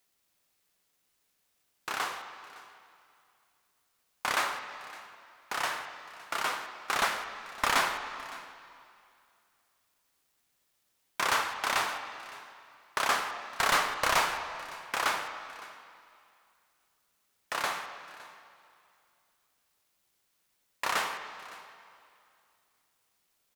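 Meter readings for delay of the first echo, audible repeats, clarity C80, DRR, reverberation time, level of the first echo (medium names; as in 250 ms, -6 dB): 561 ms, 1, 8.5 dB, 6.5 dB, 2.4 s, -20.0 dB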